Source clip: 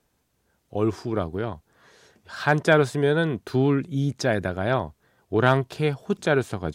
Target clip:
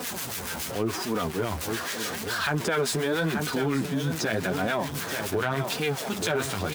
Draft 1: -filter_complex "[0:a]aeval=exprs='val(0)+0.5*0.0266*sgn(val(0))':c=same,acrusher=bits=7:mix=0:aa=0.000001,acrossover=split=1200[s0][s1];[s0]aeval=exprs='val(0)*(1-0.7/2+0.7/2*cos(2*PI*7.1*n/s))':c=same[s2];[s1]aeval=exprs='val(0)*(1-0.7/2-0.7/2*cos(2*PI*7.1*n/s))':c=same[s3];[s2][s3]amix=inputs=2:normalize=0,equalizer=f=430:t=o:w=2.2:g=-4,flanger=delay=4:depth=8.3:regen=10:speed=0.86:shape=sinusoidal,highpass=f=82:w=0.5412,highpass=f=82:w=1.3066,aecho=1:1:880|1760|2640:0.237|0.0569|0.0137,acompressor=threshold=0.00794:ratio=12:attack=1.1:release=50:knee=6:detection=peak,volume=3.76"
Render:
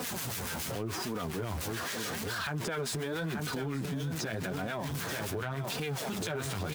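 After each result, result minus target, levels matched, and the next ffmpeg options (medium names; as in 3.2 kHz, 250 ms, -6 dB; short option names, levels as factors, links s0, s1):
compression: peak gain reduction +10.5 dB; 125 Hz band +3.0 dB
-filter_complex "[0:a]aeval=exprs='val(0)+0.5*0.0266*sgn(val(0))':c=same,acrusher=bits=7:mix=0:aa=0.000001,acrossover=split=1200[s0][s1];[s0]aeval=exprs='val(0)*(1-0.7/2+0.7/2*cos(2*PI*7.1*n/s))':c=same[s2];[s1]aeval=exprs='val(0)*(1-0.7/2-0.7/2*cos(2*PI*7.1*n/s))':c=same[s3];[s2][s3]amix=inputs=2:normalize=0,equalizer=f=430:t=o:w=2.2:g=-4,flanger=delay=4:depth=8.3:regen=10:speed=0.86:shape=sinusoidal,highpass=f=82:w=0.5412,highpass=f=82:w=1.3066,aecho=1:1:880|1760|2640:0.237|0.0569|0.0137,acompressor=threshold=0.0251:ratio=12:attack=1.1:release=50:knee=6:detection=peak,volume=3.76"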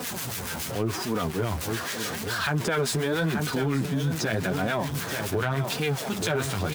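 125 Hz band +3.5 dB
-filter_complex "[0:a]aeval=exprs='val(0)+0.5*0.0266*sgn(val(0))':c=same,acrusher=bits=7:mix=0:aa=0.000001,acrossover=split=1200[s0][s1];[s0]aeval=exprs='val(0)*(1-0.7/2+0.7/2*cos(2*PI*7.1*n/s))':c=same[s2];[s1]aeval=exprs='val(0)*(1-0.7/2-0.7/2*cos(2*PI*7.1*n/s))':c=same[s3];[s2][s3]amix=inputs=2:normalize=0,equalizer=f=430:t=o:w=2.2:g=-4,flanger=delay=4:depth=8.3:regen=10:speed=0.86:shape=sinusoidal,highpass=f=82:w=0.5412,highpass=f=82:w=1.3066,equalizer=f=120:t=o:w=0.99:g=-7,aecho=1:1:880|1760|2640:0.237|0.0569|0.0137,acompressor=threshold=0.0251:ratio=12:attack=1.1:release=50:knee=6:detection=peak,volume=3.76"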